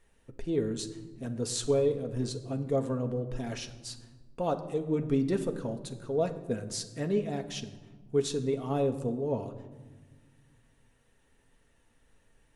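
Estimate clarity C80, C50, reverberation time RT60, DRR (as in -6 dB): 14.0 dB, 12.5 dB, 1.4 s, 4.5 dB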